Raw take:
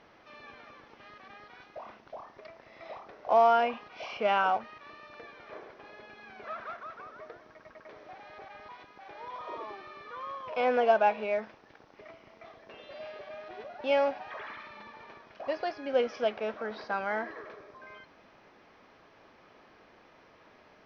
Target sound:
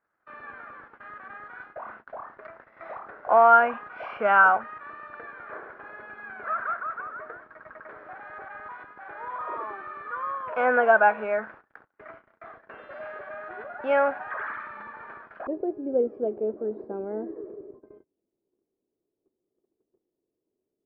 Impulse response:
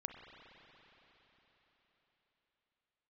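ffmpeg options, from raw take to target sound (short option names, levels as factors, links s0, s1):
-af "asetnsamples=n=441:p=0,asendcmd='15.47 lowpass f 370',lowpass=f=1500:t=q:w=4.4,agate=range=0.0355:threshold=0.00355:ratio=16:detection=peak,volume=1.26"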